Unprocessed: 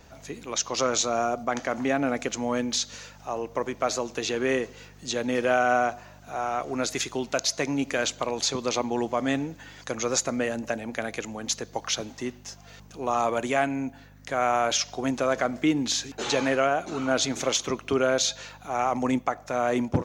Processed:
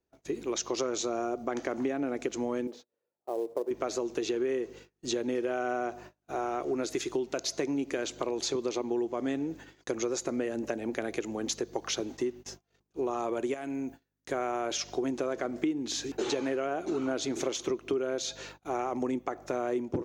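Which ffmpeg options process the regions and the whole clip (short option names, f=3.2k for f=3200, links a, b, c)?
-filter_complex "[0:a]asettb=1/sr,asplit=3[a][b][c];[a]atrim=end=2.674[d];[b]atrim=start=2.67:end=3.71,asetpts=PTS-STARTPTS,afade=t=in:d=0.004:c=qsin,afade=t=out:st=1.036:d=0.004:c=qsin,bandpass=f=540:t=q:w=1.8,acrusher=bits=5:mode=log:mix=0:aa=0.000001[e];[c]atrim=start=3.706[f];[d][e]acrossfade=d=0.004:c1=hsin:c2=qsin[g];[g][f]acrossfade=d=0.004:c1=qsin:c2=hsin,asettb=1/sr,asplit=3[h][i][j];[h]atrim=end=13.544[k];[i]atrim=start=13.54:end=14.32,asetpts=PTS-STARTPTS,afade=t=in:d=0.004:c=qsin,afade=t=out:st=0.776:d=0.004:c=qsin,acompressor=threshold=-39dB:ratio=2:attack=3.2:release=140:knee=1:detection=peak,highshelf=f=5k:g=9[l];[j]atrim=start=14.316[m];[k][l]acrossfade=d=0.004:c1=hsin:c2=qsin[n];[n][m]acrossfade=d=0.004:c1=qsin:c2=hsin,agate=range=-33dB:threshold=-43dB:ratio=16:detection=peak,equalizer=f=360:t=o:w=0.68:g=15,acompressor=threshold=-25dB:ratio=6,volume=-3dB"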